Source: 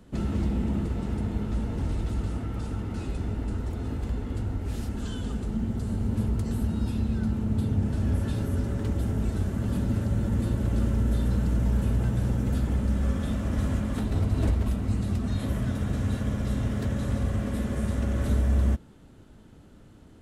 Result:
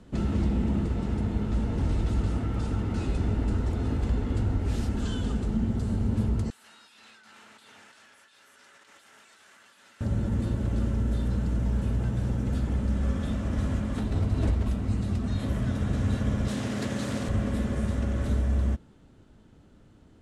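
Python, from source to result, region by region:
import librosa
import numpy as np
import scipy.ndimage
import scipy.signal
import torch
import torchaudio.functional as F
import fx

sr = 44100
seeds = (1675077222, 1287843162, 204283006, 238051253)

y = fx.chain(x, sr, fx.cheby1_highpass(hz=1700.0, order=2),
    fx.over_compress(threshold_db=-55.0, ratio=-1.0), at=(6.5, 10.01))
y = fx.chain(y, sr, fx.self_delay(depth_ms=0.28),
    fx.highpass(hz=160.0, slope=12),
    fx.high_shelf(hz=2600.0, db=8.5), at=(16.48, 17.29))
y = scipy.signal.sosfilt(scipy.signal.butter(2, 8600.0, 'lowpass', fs=sr, output='sos'), y)
y = fx.rider(y, sr, range_db=10, speed_s=2.0)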